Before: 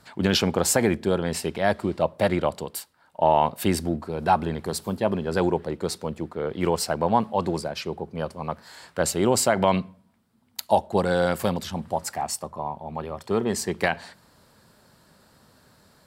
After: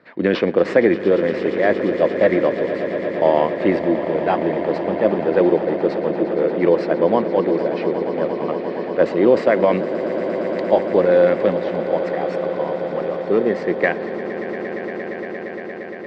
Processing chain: in parallel at -8 dB: sample-and-hold 11×; on the sum: speaker cabinet 220–3200 Hz, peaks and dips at 320 Hz +7 dB, 510 Hz +8 dB, 860 Hz -9 dB, 1400 Hz -4 dB, 1900 Hz +8 dB, 3100 Hz -6 dB; swelling echo 0.116 s, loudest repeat 8, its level -15 dB; gain +1 dB

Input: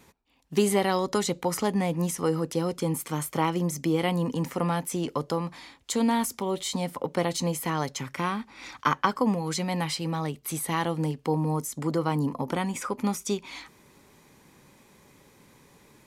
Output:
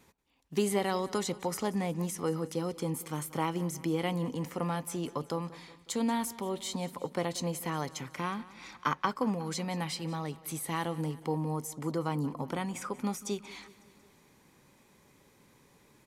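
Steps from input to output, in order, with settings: feedback echo 0.183 s, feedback 57%, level -19 dB; gain -6 dB

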